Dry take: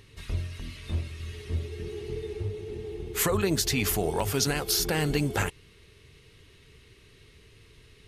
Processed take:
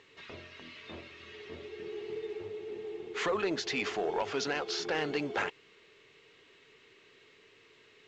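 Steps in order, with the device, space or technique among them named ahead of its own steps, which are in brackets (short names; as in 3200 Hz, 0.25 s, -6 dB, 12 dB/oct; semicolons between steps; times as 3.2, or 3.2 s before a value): telephone (BPF 380–3200 Hz; soft clip -22.5 dBFS, distortion -17 dB; A-law 128 kbps 16000 Hz)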